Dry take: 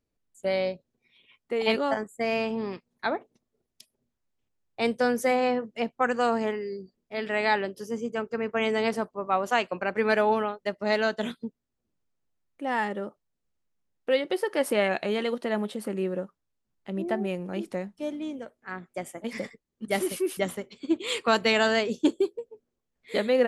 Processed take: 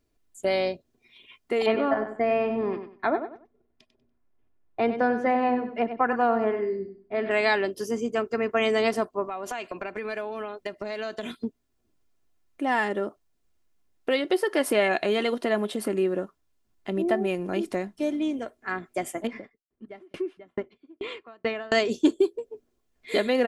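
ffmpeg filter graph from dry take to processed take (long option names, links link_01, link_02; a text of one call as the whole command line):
ffmpeg -i in.wav -filter_complex "[0:a]asettb=1/sr,asplit=3[link_01][link_02][link_03];[link_01]atrim=end=1.664[link_04];[link_02]atrim=start=1.66:end=7.31,asetpts=PTS-STARTPTS,afade=type=in:duration=0.004:curve=qsin,afade=type=out:start_time=5.646:duration=0.004:curve=qsin,lowpass=1700,aecho=1:1:96|192|288:0.299|0.0687|0.0158,atrim=end_sample=249165[link_05];[link_03]atrim=start=7.306[link_06];[link_04][link_05]acrossfade=duration=0.004:curve1=hsin:curve2=qsin[link_07];[link_07][link_06]acrossfade=duration=0.004:curve1=qsin:curve2=hsin,asettb=1/sr,asplit=3[link_08][link_09][link_10];[link_08]atrim=end=9.264[link_11];[link_09]atrim=start=9.26:end=11.44,asetpts=PTS-STARTPTS,afade=type=in:duration=0.004:curve=qsin,afade=type=out:start_time=2.176:duration=0.004:curve=qsin,acompressor=threshold=-36dB:ratio=10:attack=3.2:release=140:knee=1:detection=peak,equalizer=frequency=2400:width=7.1:gain=3.5[link_12];[link_10]atrim=start=11.436[link_13];[link_11][link_12]acrossfade=duration=0.004:curve1=hsin:curve2=qsin[link_14];[link_14][link_13]acrossfade=duration=0.004:curve1=qsin:curve2=hsin,asettb=1/sr,asplit=3[link_15][link_16][link_17];[link_15]atrim=end=19.274[link_18];[link_16]atrim=start=19.27:end=21.72,asetpts=PTS-STARTPTS,afade=type=in:duration=0.004:curve=qsin,afade=type=out:start_time=2.446:duration=0.004:curve=qsin,lowpass=2000,acompressor=threshold=-26dB:ratio=2:attack=3.2:release=140:knee=1:detection=peak,aeval=exprs='val(0)*pow(10,-40*if(lt(mod(2.3*n/s,1),2*abs(2.3)/1000),1-mod(2.3*n/s,1)/(2*abs(2.3)/1000),(mod(2.3*n/s,1)-2*abs(2.3)/1000)/(1-2*abs(2.3)/1000))/20)':channel_layout=same[link_19];[link_17]atrim=start=21.716[link_20];[link_18][link_19]acrossfade=duration=0.004:curve1=hsin:curve2=qsin[link_21];[link_21][link_20]acrossfade=duration=0.004:curve1=qsin:curve2=hsin,aecho=1:1:2.9:0.42,acompressor=threshold=-35dB:ratio=1.5,volume=7dB" out.wav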